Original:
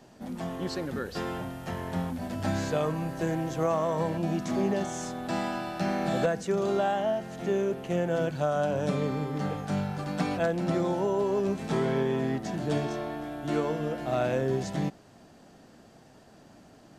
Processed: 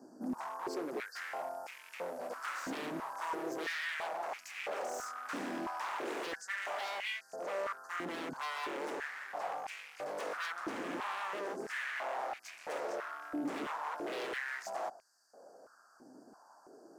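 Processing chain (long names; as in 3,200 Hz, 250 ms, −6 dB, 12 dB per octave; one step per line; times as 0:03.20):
Chebyshev band-stop filter 1,600–4,700 Hz, order 4
wave folding −32 dBFS
high-pass on a step sequencer 3 Hz 280–2,400 Hz
level −5.5 dB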